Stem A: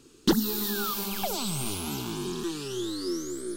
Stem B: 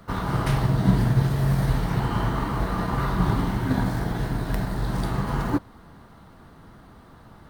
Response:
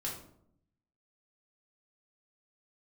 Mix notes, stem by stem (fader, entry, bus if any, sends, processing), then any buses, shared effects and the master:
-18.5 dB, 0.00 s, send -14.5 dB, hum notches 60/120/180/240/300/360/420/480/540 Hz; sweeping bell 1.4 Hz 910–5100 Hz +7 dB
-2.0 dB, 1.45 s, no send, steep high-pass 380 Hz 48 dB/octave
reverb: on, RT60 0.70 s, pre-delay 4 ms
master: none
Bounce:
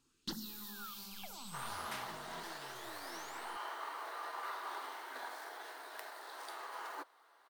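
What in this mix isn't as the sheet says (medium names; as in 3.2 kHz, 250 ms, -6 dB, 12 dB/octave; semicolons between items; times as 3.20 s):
stem B -2.0 dB -> -10.5 dB; master: extra peaking EQ 420 Hz -10.5 dB 1.2 oct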